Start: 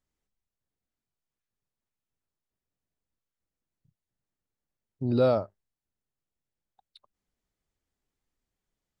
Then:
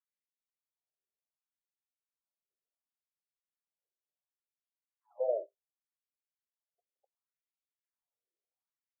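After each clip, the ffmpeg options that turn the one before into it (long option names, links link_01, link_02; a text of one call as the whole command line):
ffmpeg -i in.wav -af "aemphasis=mode=reproduction:type=riaa,flanger=delay=1.9:depth=6.9:regen=-61:speed=2:shape=sinusoidal,afftfilt=real='re*between(b*sr/1024,480*pow(3100/480,0.5+0.5*sin(2*PI*0.69*pts/sr))/1.41,480*pow(3100/480,0.5+0.5*sin(2*PI*0.69*pts/sr))*1.41)':imag='im*between(b*sr/1024,480*pow(3100/480,0.5+0.5*sin(2*PI*0.69*pts/sr))/1.41,480*pow(3100/480,0.5+0.5*sin(2*PI*0.69*pts/sr))*1.41)':win_size=1024:overlap=0.75,volume=-4dB" out.wav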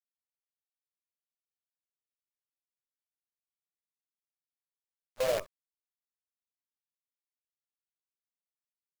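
ffmpeg -i in.wav -filter_complex "[0:a]asplit=2[link_01][link_02];[link_02]asoftclip=type=hard:threshold=-33.5dB,volume=-10dB[link_03];[link_01][link_03]amix=inputs=2:normalize=0,acrusher=bits=6:dc=4:mix=0:aa=0.000001" out.wav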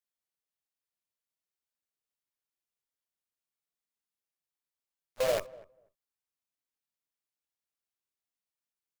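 ffmpeg -i in.wav -filter_complex "[0:a]asplit=2[link_01][link_02];[link_02]adelay=244,lowpass=frequency=950:poles=1,volume=-20dB,asplit=2[link_03][link_04];[link_04]adelay=244,lowpass=frequency=950:poles=1,volume=0.16[link_05];[link_01][link_03][link_05]amix=inputs=3:normalize=0,volume=1dB" out.wav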